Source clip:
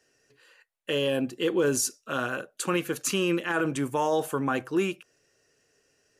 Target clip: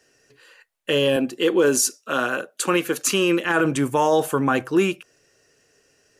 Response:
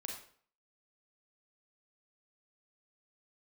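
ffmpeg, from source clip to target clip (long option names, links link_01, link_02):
-filter_complex "[0:a]asettb=1/sr,asplit=3[link_01][link_02][link_03];[link_01]atrim=end=1.164[link_04];[link_02]atrim=start=1.16:end=3.45,asetpts=PTS-STARTPTS,afade=type=in:duration=0.004:curve=qsin,afade=type=out:start_time=2.286:duration=0.004:curve=qsin,highpass=210[link_05];[link_03]atrim=start=3.446[link_06];[link_04][link_05]acrossfade=duration=0.004:curve1=hsin:curve2=qsin[link_07];[link_07][link_06]acrossfade=duration=0.004:curve1=qsin:curve2=hsin,volume=7dB"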